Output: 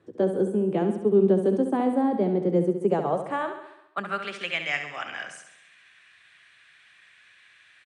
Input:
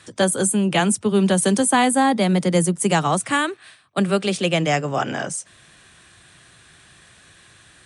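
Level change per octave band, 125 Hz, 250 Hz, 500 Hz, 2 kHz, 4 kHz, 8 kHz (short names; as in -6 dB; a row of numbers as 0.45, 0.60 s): -9.0, -5.5, -2.0, -8.0, -12.5, -28.5 dB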